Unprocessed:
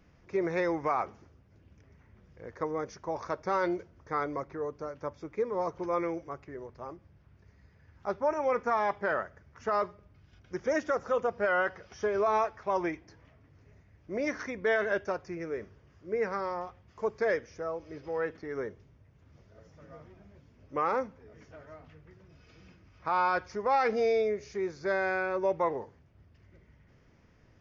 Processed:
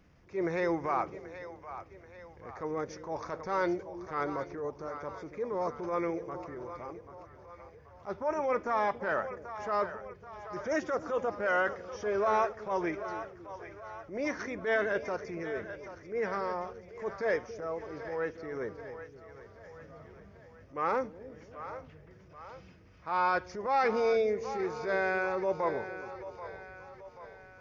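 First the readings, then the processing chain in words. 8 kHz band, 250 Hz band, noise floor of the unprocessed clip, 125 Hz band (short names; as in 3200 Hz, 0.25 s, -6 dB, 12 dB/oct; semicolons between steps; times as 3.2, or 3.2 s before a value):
n/a, -0.5 dB, -62 dBFS, -0.5 dB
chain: split-band echo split 470 Hz, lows 0.278 s, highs 0.783 s, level -12 dB; transient shaper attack -8 dB, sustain 0 dB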